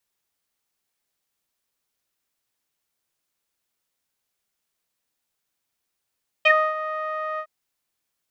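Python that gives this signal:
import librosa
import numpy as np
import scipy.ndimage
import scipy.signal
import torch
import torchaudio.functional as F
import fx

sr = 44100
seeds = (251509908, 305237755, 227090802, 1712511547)

y = fx.sub_voice(sr, note=75, wave='saw', cutoff_hz=1500.0, q=10.0, env_oct=1.0, env_s=0.08, attack_ms=8.6, decay_s=0.28, sustain_db=-12.5, release_s=0.07, note_s=0.94, slope=12)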